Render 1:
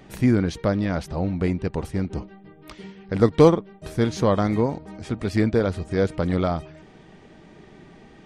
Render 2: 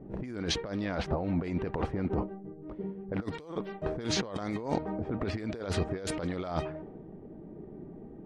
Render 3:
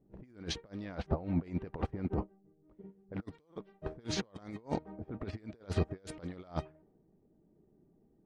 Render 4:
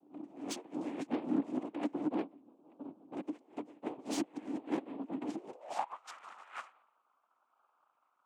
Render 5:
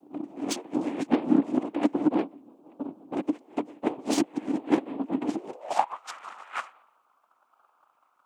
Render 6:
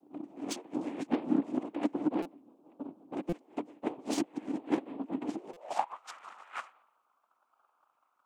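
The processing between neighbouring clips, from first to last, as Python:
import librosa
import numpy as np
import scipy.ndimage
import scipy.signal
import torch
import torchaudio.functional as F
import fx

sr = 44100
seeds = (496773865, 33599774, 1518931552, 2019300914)

y1 = fx.bass_treble(x, sr, bass_db=-8, treble_db=2)
y1 = fx.env_lowpass(y1, sr, base_hz=300.0, full_db=-19.5)
y1 = fx.over_compress(y1, sr, threshold_db=-34.0, ratio=-1.0)
y2 = fx.low_shelf(y1, sr, hz=220.0, db=3.5)
y2 = fx.upward_expand(y2, sr, threshold_db=-39.0, expansion=2.5)
y2 = y2 * 10.0 ** (-1.0 / 20.0)
y3 = fx.noise_vocoder(y2, sr, seeds[0], bands=4)
y3 = 10.0 ** (-32.5 / 20.0) * np.tanh(y3 / 10.0 ** (-32.5 / 20.0))
y3 = fx.filter_sweep_highpass(y3, sr, from_hz=290.0, to_hz=1300.0, start_s=5.31, end_s=6.02, q=5.3)
y3 = y3 * 10.0 ** (-1.5 / 20.0)
y4 = fx.transient(y3, sr, attack_db=6, sustain_db=2)
y4 = y4 * 10.0 ** (7.5 / 20.0)
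y5 = fx.buffer_glitch(y4, sr, at_s=(2.22, 3.29, 5.53), block=256, repeats=5)
y5 = y5 * 10.0 ** (-7.0 / 20.0)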